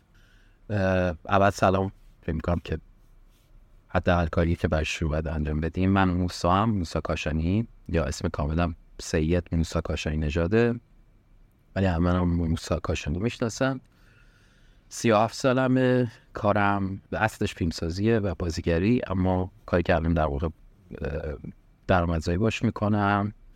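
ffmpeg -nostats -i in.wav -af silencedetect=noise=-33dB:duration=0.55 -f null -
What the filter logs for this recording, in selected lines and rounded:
silence_start: 0.00
silence_end: 0.70 | silence_duration: 0.70
silence_start: 2.78
silence_end: 3.94 | silence_duration: 1.16
silence_start: 10.78
silence_end: 11.76 | silence_duration: 0.98
silence_start: 13.78
silence_end: 14.93 | silence_duration: 1.15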